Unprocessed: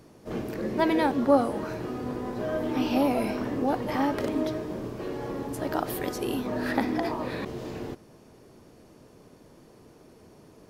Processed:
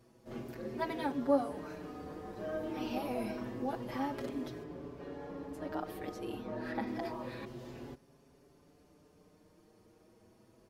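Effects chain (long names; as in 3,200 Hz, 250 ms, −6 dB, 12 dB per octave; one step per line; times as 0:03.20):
0:04.63–0:06.87: high-shelf EQ 5,400 Hz −11 dB
barber-pole flanger 5.7 ms +0.28 Hz
level −7.5 dB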